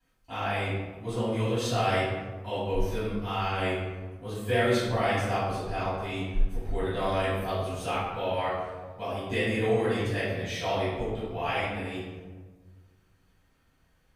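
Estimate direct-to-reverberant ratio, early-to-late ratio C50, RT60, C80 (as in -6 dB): -15.5 dB, -1.5 dB, 1.4 s, 1.5 dB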